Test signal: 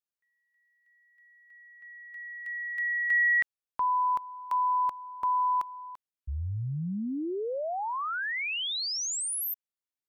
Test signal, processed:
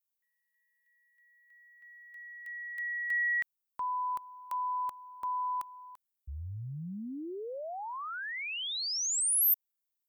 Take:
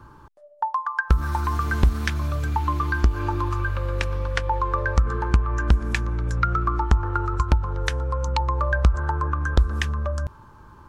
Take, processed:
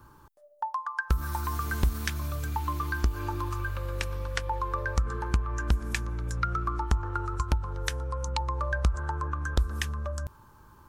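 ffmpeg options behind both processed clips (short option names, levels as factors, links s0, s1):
-af "aemphasis=mode=production:type=50fm,volume=0.447"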